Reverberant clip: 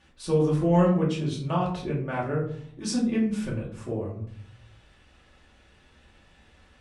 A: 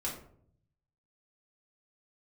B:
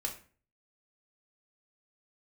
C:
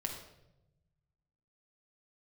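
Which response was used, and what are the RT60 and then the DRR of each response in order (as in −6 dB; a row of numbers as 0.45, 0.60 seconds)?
A; 0.60, 0.40, 0.90 seconds; −5.5, 0.5, 1.5 decibels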